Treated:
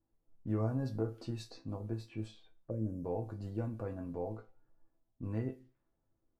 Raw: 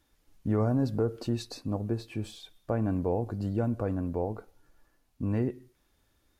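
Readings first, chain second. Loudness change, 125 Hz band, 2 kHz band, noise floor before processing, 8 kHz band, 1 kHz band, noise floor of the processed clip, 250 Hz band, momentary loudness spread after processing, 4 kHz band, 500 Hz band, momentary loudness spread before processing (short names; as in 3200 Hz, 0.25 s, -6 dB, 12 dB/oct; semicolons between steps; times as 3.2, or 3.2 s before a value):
-8.5 dB, -7.0 dB, -9.0 dB, -72 dBFS, under -10 dB, -9.5 dB, -81 dBFS, -9.0 dB, 11 LU, -10.0 dB, -9.0 dB, 11 LU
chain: low-pass opened by the level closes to 680 Hz, open at -28 dBFS; resonator bank A2 minor, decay 0.21 s; spectral gain 2.7–3.05, 630–4900 Hz -22 dB; gain +3 dB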